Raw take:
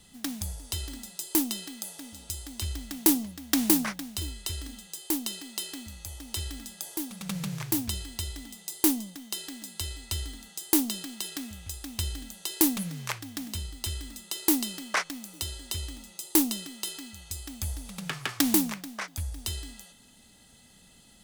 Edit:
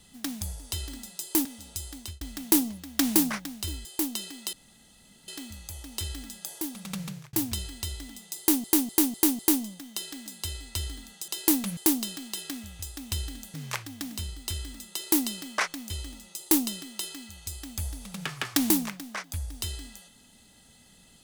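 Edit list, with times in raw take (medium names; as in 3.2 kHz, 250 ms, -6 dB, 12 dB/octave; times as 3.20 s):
1.45–1.99 s: delete
2.50–2.75 s: fade out
4.39–4.96 s: delete
5.64 s: insert room tone 0.75 s
7.14–7.69 s: fade out equal-power
8.75–9.00 s: loop, 5 plays
12.41–12.90 s: move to 10.64 s
15.26–15.74 s: delete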